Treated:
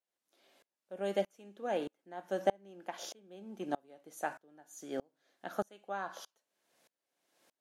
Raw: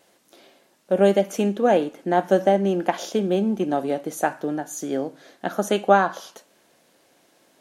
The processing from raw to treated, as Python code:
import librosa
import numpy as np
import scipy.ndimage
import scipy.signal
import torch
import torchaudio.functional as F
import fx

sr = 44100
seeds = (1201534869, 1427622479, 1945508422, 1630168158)

y = fx.low_shelf(x, sr, hz=440.0, db=-8.0)
y = fx.tremolo_decay(y, sr, direction='swelling', hz=1.6, depth_db=31)
y = y * 10.0 ** (-6.0 / 20.0)